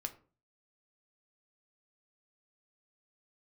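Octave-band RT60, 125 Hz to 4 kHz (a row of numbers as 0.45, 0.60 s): 0.55, 0.50, 0.40, 0.35, 0.30, 0.25 s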